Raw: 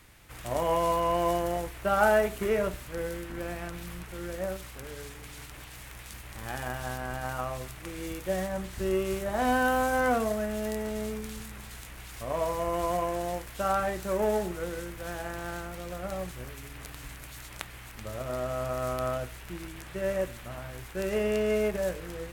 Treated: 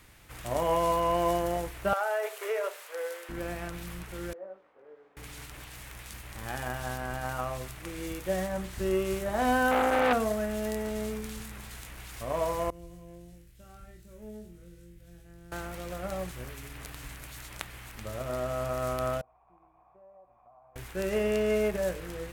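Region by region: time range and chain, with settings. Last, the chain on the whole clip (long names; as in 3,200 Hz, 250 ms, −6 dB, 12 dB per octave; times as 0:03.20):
0:01.93–0:03.29: elliptic high-pass filter 450 Hz, stop band 60 dB + downward compressor 5 to 1, threshold −26 dBFS
0:04.33–0:05.17: four-pole ladder band-pass 590 Hz, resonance 30% + double-tracking delay 20 ms −5 dB
0:09.71–0:10.13: parametric band 400 Hz +7.5 dB 2.9 octaves + saturating transformer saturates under 1,600 Hz
0:12.70–0:15.52: guitar amp tone stack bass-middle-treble 10-0-1 + flutter between parallel walls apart 4 metres, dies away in 0.32 s
0:19.21–0:20.76: formant resonators in series a + downward compressor 3 to 1, threshold −55 dBFS
whole clip: no processing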